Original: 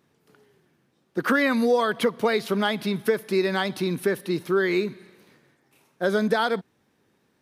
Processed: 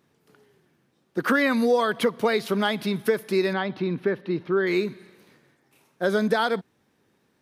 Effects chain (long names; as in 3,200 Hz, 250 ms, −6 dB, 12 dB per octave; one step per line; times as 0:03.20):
0:03.53–0:04.67: high-frequency loss of the air 300 metres